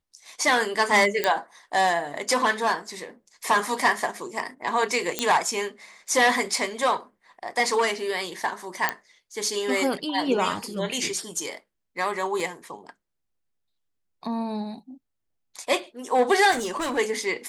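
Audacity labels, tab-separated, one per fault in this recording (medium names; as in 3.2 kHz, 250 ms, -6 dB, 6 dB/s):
1.240000	1.240000	pop -7 dBFS
5.190000	5.190000	pop -7 dBFS
8.890000	8.890000	pop -7 dBFS
12.400000	12.400000	dropout 2.4 ms
16.510000	16.990000	clipped -24 dBFS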